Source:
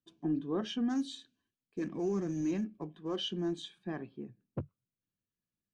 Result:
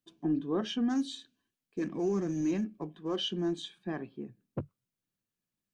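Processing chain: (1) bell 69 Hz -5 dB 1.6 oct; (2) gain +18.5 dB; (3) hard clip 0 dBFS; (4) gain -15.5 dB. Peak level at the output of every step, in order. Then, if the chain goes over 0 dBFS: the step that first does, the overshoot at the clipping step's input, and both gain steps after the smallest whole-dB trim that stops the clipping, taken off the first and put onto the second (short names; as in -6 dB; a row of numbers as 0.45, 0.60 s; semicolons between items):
-24.0, -5.5, -5.5, -21.0 dBFS; no overload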